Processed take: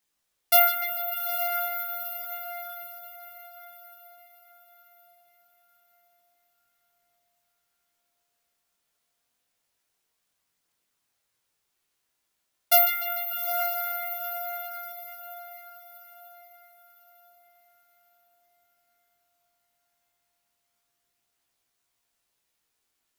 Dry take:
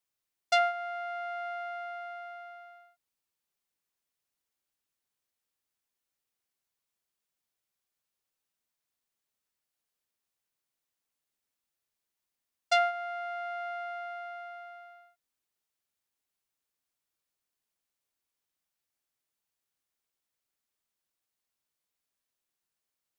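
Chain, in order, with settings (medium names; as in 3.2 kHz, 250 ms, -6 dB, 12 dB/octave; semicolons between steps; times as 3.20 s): bass shelf 500 Hz -8 dB; careless resampling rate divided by 3×, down none, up zero stuff; filtered feedback delay 148 ms, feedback 78%, low-pass 4.8 kHz, level -8 dB; chorus voices 2, 0.14 Hz, delay 19 ms, depth 3.2 ms; echo that smears into a reverb 875 ms, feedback 40%, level -10 dB; trim +7 dB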